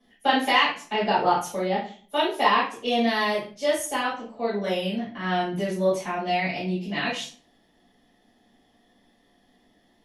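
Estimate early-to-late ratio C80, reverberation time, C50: 11.0 dB, 0.45 s, 5.5 dB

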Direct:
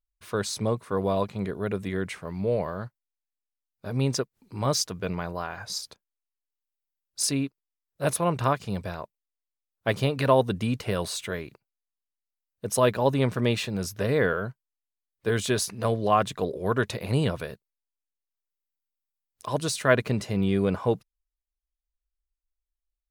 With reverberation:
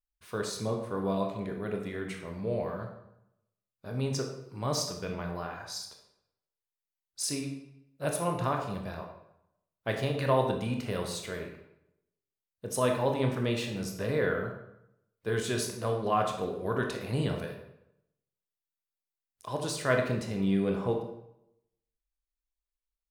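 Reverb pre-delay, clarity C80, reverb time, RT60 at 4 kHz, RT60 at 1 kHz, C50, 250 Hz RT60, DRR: 19 ms, 8.0 dB, 0.80 s, 0.60 s, 0.80 s, 5.5 dB, 0.80 s, 2.0 dB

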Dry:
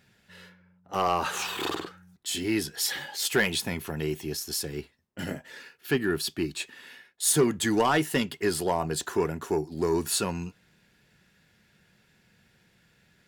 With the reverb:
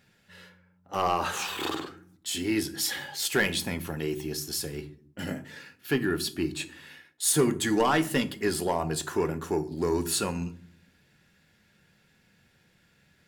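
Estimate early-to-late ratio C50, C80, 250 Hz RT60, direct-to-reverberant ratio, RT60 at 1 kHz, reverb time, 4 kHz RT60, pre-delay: 17.0 dB, 22.5 dB, 0.90 s, 10.0 dB, 0.45 s, 0.55 s, 0.30 s, 4 ms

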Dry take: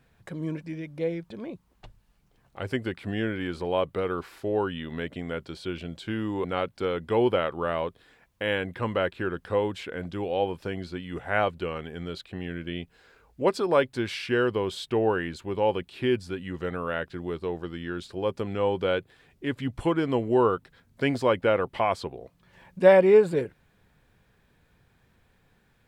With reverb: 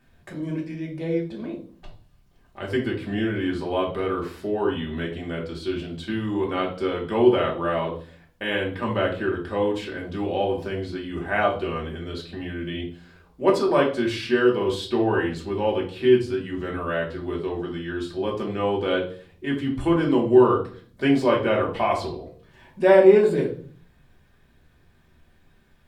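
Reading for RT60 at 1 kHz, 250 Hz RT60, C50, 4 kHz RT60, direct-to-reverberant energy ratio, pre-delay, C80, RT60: 0.40 s, 0.75 s, 8.0 dB, 0.40 s, -2.5 dB, 3 ms, 14.0 dB, 0.45 s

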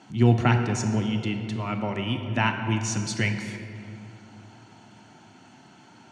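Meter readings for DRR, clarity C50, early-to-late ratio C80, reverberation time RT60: 5.5 dB, 6.5 dB, 7.5 dB, 2.9 s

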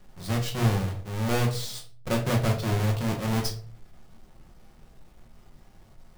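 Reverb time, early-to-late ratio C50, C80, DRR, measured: 0.50 s, 10.0 dB, 14.5 dB, 1.0 dB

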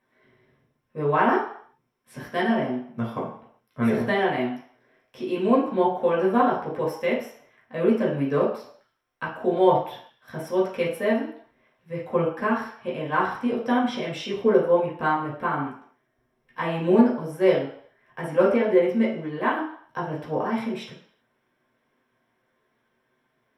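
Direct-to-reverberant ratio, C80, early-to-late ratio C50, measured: -5.5 dB, 9.0 dB, 5.0 dB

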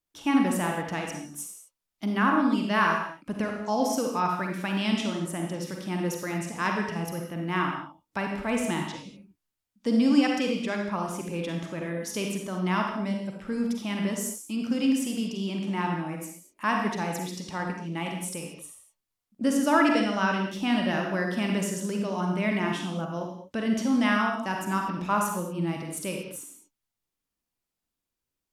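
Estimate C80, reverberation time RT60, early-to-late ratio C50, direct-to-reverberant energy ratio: 6.0 dB, not exponential, 2.5 dB, 1.0 dB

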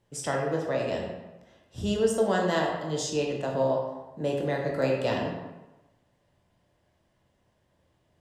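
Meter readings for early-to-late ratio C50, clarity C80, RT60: 2.5 dB, 4.5 dB, 1.1 s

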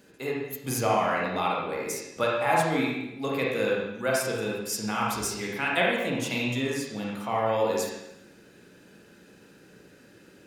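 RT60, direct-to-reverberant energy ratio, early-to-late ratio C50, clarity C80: 0.85 s, -3.5 dB, -0.5 dB, 3.0 dB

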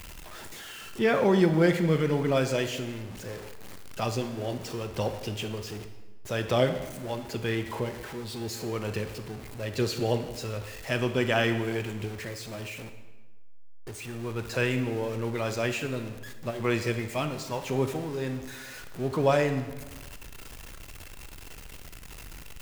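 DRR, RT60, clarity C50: 7.5 dB, 1.2 s, 9.0 dB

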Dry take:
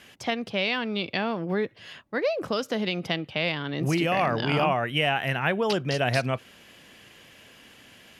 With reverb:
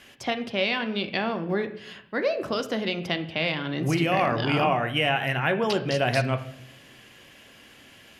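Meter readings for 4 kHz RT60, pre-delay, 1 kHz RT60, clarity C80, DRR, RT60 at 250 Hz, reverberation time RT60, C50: 0.60 s, 3 ms, 0.60 s, 16.0 dB, 7.0 dB, 1.0 s, 0.70 s, 13.0 dB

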